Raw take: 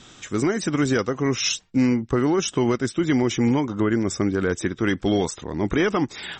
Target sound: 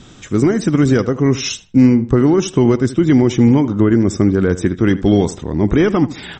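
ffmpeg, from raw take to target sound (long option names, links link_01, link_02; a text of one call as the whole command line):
ffmpeg -i in.wav -filter_complex "[0:a]lowshelf=frequency=460:gain=11,asplit=2[link_01][link_02];[link_02]adelay=78,lowpass=frequency=3100:poles=1,volume=-15.5dB,asplit=2[link_03][link_04];[link_04]adelay=78,lowpass=frequency=3100:poles=1,volume=0.27,asplit=2[link_05][link_06];[link_06]adelay=78,lowpass=frequency=3100:poles=1,volume=0.27[link_07];[link_03][link_05][link_07]amix=inputs=3:normalize=0[link_08];[link_01][link_08]amix=inputs=2:normalize=0,volume=1dB" out.wav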